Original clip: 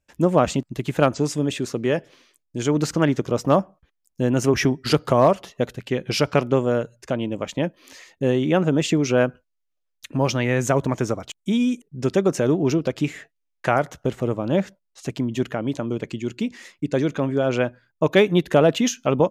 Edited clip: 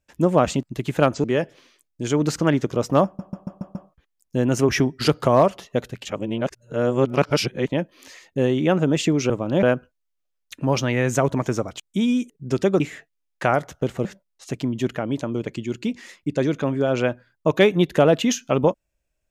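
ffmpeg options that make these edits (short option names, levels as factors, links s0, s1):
-filter_complex "[0:a]asplit=13[s0][s1][s2][s3][s4][s5][s6][s7][s8][s9][s10][s11][s12];[s0]atrim=end=1.242[s13];[s1]atrim=start=1.788:end=3.742[s14];[s2]atrim=start=3.598:end=3.742[s15];[s3]atrim=start=3.598:end=3.742[s16];[s4]atrim=start=3.598:end=3.742[s17];[s5]atrim=start=3.598:end=3.742[s18];[s6]atrim=start=3.598:end=5.902[s19];[s7]atrim=start=5.898:end=7.522,asetpts=PTS-STARTPTS,areverse[s20];[s8]atrim=start=7.518:end=9.152[s21];[s9]atrim=start=14.278:end=14.612[s22];[s10]atrim=start=9.148:end=12.322[s23];[s11]atrim=start=13.028:end=14.282[s24];[s12]atrim=start=14.608[s25];[s13][s14]acrossfade=d=0.004:c1=hsin:c2=hsin[s26];[s26][s15]acrossfade=d=0.004:c1=hsin:c2=hsin[s27];[s27][s16]acrossfade=d=0.004:c1=hsin:c2=hsin[s28];[s28][s17]acrossfade=d=0.004:c1=hsin:c2=hsin[s29];[s29][s18]acrossfade=d=0.004:c1=hsin:c2=hsin[s30];[s30][s19]acrossfade=d=0.004:c1=hsin:c2=hsin[s31];[s31][s20]acrossfade=d=0.004:c1=hsin:c2=hsin[s32];[s32][s21]acrossfade=d=0.004:c1=hsin:c2=hsin[s33];[s33][s22]acrossfade=d=0.004:c1=hsin:c2=hsin[s34];[s34][s23]acrossfade=d=0.004:c1=hsin:c2=hsin[s35];[s35][s24]acrossfade=d=0.004:c1=hsin:c2=hsin[s36];[s36][s25]acrossfade=d=0.004:c1=hsin:c2=hsin"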